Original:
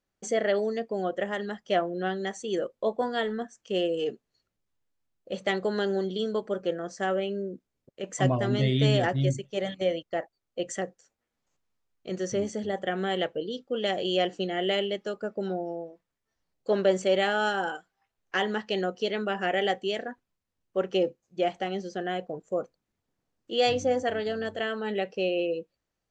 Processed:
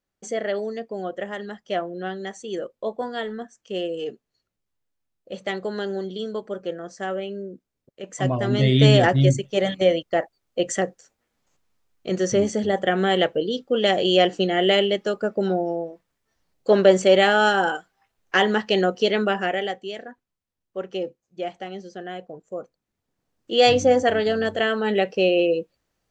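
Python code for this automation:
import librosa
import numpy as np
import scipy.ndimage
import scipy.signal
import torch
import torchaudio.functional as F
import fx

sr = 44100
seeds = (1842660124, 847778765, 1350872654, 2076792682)

y = fx.gain(x, sr, db=fx.line((8.15, -0.5), (8.82, 8.5), (19.25, 8.5), (19.76, -3.0), (22.6, -3.0), (23.69, 8.5)))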